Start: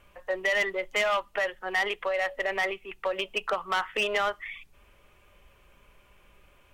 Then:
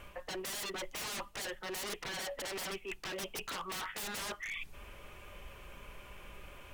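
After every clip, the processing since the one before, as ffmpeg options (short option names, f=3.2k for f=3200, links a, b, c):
-af "aeval=exprs='0.0211*(abs(mod(val(0)/0.0211+3,4)-2)-1)':c=same,areverse,acompressor=threshold=-47dB:ratio=6,areverse,volume=8dB"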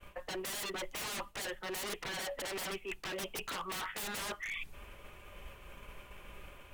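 -af "agate=range=-33dB:threshold=-47dB:ratio=3:detection=peak,equalizer=f=5.4k:t=o:w=0.77:g=-2.5,volume=1dB"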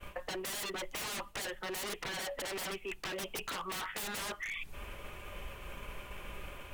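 -af "acompressor=threshold=-44dB:ratio=5,volume=6.5dB"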